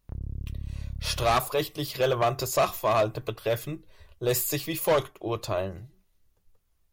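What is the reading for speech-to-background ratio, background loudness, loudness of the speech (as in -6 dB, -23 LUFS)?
11.0 dB, -38.5 LUFS, -27.5 LUFS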